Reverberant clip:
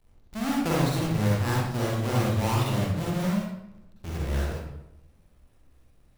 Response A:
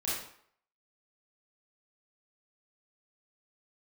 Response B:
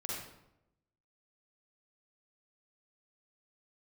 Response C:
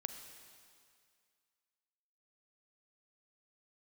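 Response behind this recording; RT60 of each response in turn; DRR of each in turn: B; 0.60, 0.85, 2.2 seconds; −8.5, −5.0, 7.0 decibels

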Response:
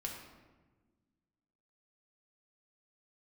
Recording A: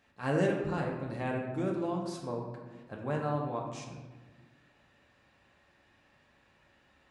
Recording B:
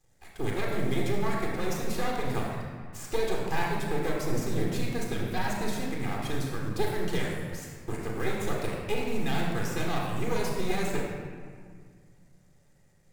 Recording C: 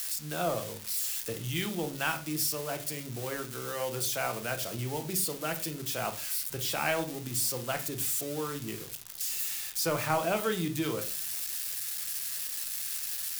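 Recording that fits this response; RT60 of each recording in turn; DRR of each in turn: A; 1.3, 2.0, 0.40 seconds; −1.0, −2.0, 5.5 decibels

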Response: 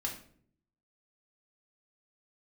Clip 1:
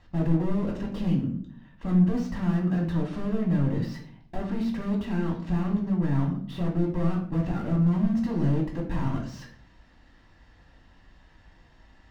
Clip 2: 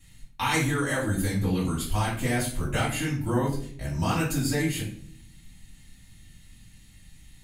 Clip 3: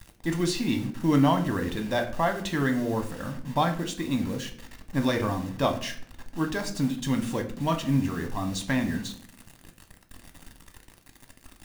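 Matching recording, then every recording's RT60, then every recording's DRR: 1; 0.55, 0.55, 0.60 seconds; −1.0, −8.5, 5.0 decibels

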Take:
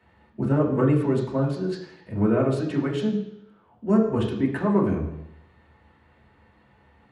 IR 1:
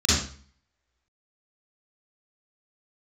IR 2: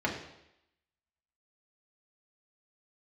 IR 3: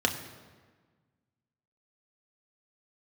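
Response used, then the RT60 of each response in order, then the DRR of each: 2; 0.45, 0.80, 1.5 seconds; −8.5, −2.5, 2.5 decibels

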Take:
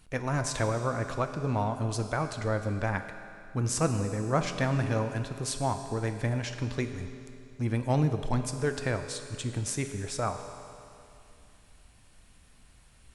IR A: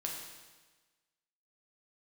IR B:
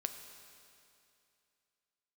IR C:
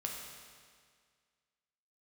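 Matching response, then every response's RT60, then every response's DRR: B; 1.3, 2.6, 1.9 seconds; −1.0, 6.5, −0.5 decibels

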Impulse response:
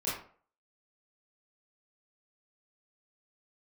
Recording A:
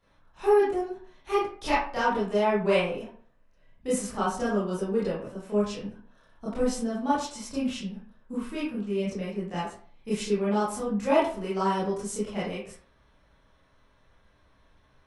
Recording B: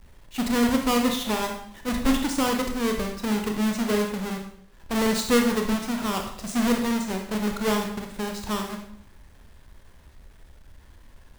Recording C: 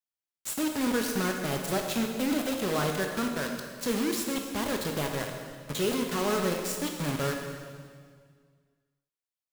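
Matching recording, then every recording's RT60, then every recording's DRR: A; 0.45, 0.65, 1.9 seconds; −10.0, 3.0, 2.5 decibels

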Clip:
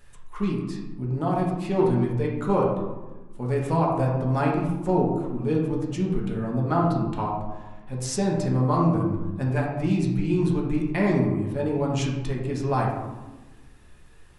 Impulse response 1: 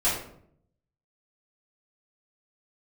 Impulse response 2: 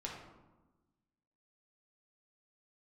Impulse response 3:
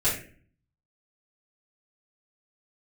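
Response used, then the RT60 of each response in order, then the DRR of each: 2; 0.65, 1.2, 0.45 seconds; −12.0, −3.0, −10.5 decibels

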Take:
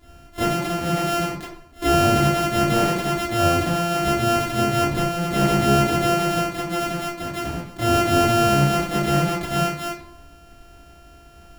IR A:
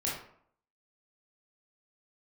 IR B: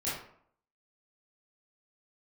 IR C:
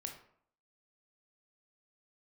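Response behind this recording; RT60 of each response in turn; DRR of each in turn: B; 0.60, 0.60, 0.60 seconds; −5.5, −10.5, 3.0 decibels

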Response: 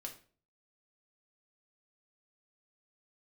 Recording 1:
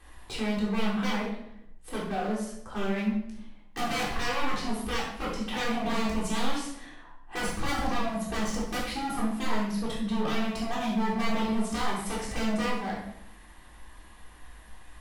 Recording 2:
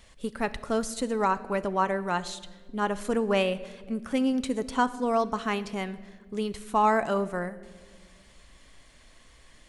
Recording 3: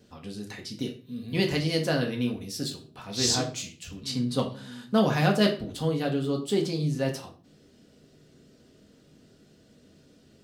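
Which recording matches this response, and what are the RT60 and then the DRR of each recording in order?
3; 0.75, 1.7, 0.45 seconds; −7.5, 12.5, 1.0 decibels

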